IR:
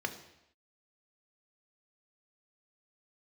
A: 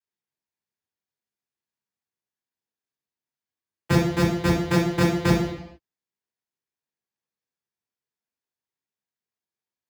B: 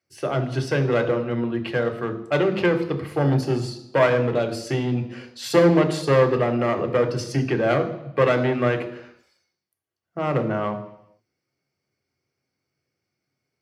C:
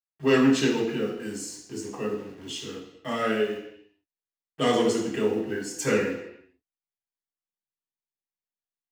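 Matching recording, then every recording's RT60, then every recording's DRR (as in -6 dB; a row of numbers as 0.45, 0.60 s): B; not exponential, not exponential, not exponential; -8.5, 5.5, -4.5 dB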